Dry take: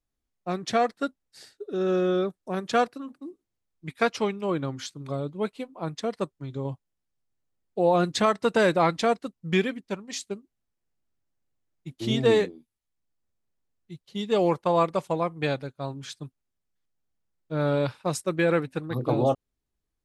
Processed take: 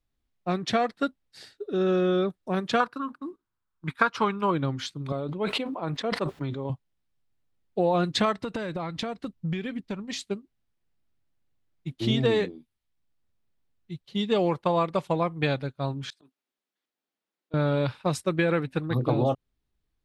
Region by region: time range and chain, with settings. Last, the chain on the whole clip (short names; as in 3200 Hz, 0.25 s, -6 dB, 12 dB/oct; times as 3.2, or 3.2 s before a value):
2.8–4.51 gate -54 dBFS, range -6 dB + band shelf 1200 Hz +12 dB 1 oct
5.12–6.7 HPF 410 Hz 6 dB/oct + high shelf 2800 Hz -10 dB + sustainer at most 28 dB/s
8.37–10.19 low shelf 150 Hz +9 dB + compressor 16:1, threshold -30 dBFS
16.1–17.54 HPF 260 Hz 24 dB/oct + compressor 1.5:1, threshold -44 dBFS + auto swell 0.12 s
whole clip: EQ curve 130 Hz 0 dB, 470 Hz -4 dB, 3700 Hz -1 dB, 6600 Hz -9 dB; compressor, threshold -25 dBFS; gain +5.5 dB